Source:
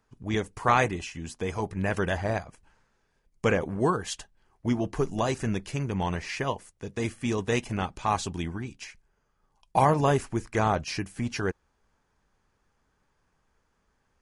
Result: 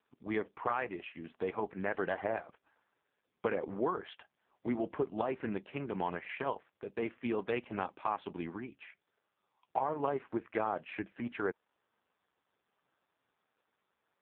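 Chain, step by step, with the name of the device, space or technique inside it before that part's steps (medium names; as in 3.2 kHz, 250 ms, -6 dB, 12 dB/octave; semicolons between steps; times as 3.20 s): voicemail (band-pass 300–2600 Hz; compression 12:1, threshold -26 dBFS, peak gain reduction 10.5 dB; trim -1 dB; AMR-NB 5.15 kbps 8 kHz)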